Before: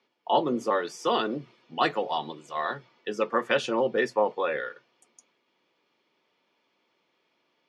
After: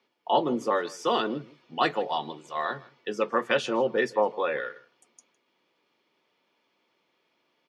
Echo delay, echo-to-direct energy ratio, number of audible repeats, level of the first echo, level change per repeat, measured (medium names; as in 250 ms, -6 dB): 158 ms, -22.0 dB, 1, -22.0 dB, no regular repeats